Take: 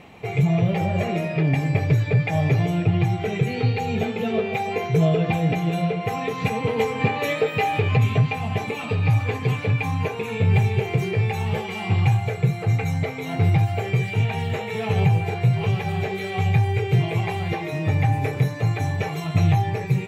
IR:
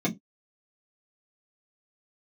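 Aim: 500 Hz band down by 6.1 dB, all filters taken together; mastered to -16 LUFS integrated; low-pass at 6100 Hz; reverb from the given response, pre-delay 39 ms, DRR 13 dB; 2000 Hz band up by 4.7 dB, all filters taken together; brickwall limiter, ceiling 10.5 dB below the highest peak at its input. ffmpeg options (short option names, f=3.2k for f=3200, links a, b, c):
-filter_complex "[0:a]lowpass=6.1k,equalizer=f=500:t=o:g=-8,equalizer=f=2k:t=o:g=6,alimiter=limit=-18dB:level=0:latency=1,asplit=2[a][b];[1:a]atrim=start_sample=2205,adelay=39[c];[b][c]afir=irnorm=-1:irlink=0,volume=-22dB[d];[a][d]amix=inputs=2:normalize=0,volume=9dB"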